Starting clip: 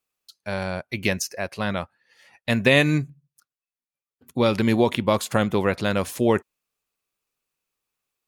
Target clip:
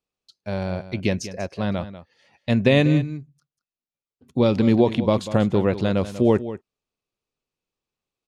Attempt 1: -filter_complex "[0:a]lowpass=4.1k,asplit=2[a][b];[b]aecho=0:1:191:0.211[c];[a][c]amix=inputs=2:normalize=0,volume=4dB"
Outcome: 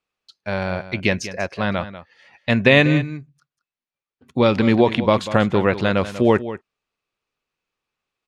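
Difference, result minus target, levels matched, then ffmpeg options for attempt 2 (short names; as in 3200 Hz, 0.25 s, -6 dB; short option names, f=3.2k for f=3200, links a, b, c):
2000 Hz band +7.0 dB
-filter_complex "[0:a]lowpass=4.1k,equalizer=f=1.7k:t=o:w=2.2:g=-11,asplit=2[a][b];[b]aecho=0:1:191:0.211[c];[a][c]amix=inputs=2:normalize=0,volume=4dB"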